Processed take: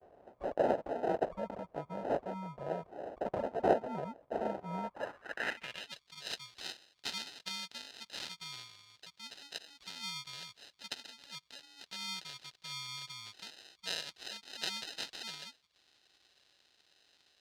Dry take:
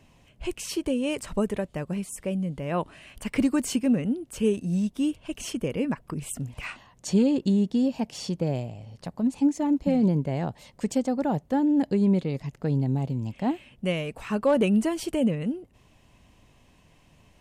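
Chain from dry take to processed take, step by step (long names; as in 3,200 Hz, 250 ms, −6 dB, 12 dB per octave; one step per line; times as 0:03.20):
noise gate with hold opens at −50 dBFS
inverse Chebyshev band-stop filter 340–1,200 Hz, stop band 40 dB
parametric band 270 Hz −15 dB 2.6 octaves
decimation without filtering 39×
band-pass filter sweep 640 Hz → 4,100 Hz, 0:04.72–0:05.99
level +15 dB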